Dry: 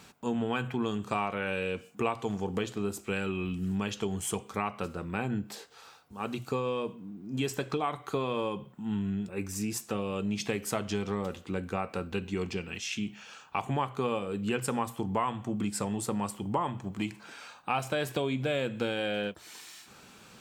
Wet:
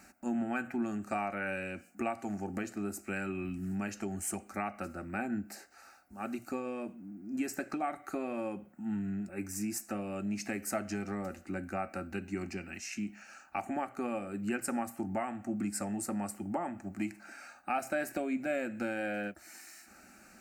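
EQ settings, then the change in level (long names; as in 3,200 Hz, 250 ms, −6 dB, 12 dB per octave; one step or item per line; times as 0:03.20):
phaser with its sweep stopped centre 680 Hz, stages 8
0.0 dB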